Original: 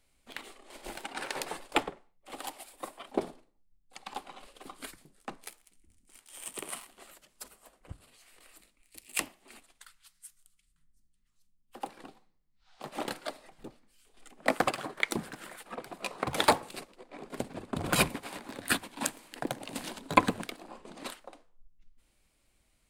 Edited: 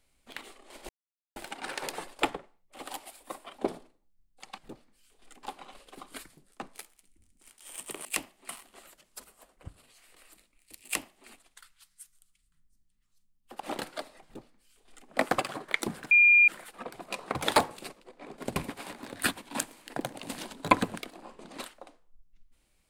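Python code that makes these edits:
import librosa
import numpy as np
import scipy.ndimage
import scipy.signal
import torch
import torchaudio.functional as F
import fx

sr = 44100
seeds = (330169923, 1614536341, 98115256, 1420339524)

y = fx.edit(x, sr, fx.insert_silence(at_s=0.89, length_s=0.47),
    fx.duplicate(start_s=9.08, length_s=0.44, to_s=6.73),
    fx.cut(start_s=11.84, length_s=1.05),
    fx.duplicate(start_s=13.53, length_s=0.85, to_s=4.11),
    fx.insert_tone(at_s=15.4, length_s=0.37, hz=2410.0, db=-15.5),
    fx.cut(start_s=17.48, length_s=0.54), tone=tone)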